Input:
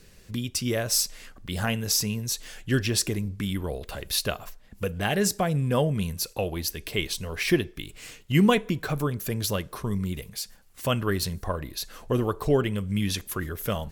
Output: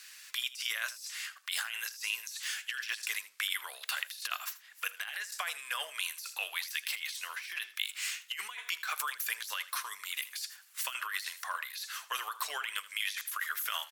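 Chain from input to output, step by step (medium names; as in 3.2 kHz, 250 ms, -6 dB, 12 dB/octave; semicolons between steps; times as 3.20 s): high-pass 1.3 kHz 24 dB/octave; compressor with a negative ratio -40 dBFS, ratio -1; delay 80 ms -17 dB; trim +2 dB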